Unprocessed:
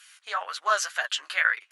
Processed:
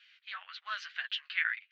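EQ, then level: Butterworth band-pass 3 kHz, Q 1.1; distance through air 230 m; -1.0 dB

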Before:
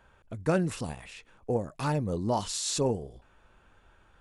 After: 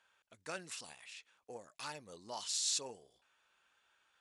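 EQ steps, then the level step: band-pass filter 5.2 kHz, Q 0.68; -2.0 dB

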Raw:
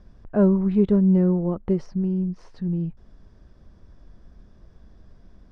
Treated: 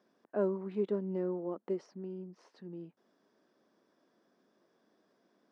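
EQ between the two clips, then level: high-pass 270 Hz 24 dB/octave; -9.0 dB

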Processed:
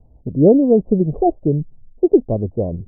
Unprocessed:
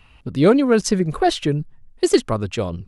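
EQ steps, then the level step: steep low-pass 720 Hz 48 dB/octave; +3.0 dB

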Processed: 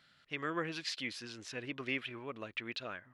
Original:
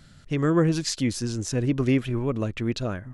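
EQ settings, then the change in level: differentiator; dynamic bell 2.5 kHz, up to +4 dB, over -53 dBFS, Q 1; distance through air 390 m; +9.0 dB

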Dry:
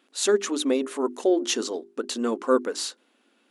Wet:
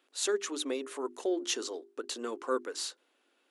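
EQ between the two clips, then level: high-pass 320 Hz 24 dB/octave; dynamic bell 630 Hz, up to -6 dB, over -34 dBFS, Q 1.1; -6.0 dB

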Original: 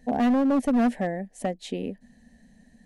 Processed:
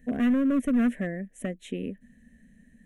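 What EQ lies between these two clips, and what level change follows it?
static phaser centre 2 kHz, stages 4; 0.0 dB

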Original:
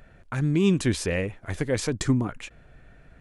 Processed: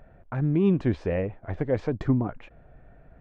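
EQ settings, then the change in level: tape spacing loss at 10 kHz 44 dB; peaking EQ 700 Hz +7 dB 0.9 oct; 0.0 dB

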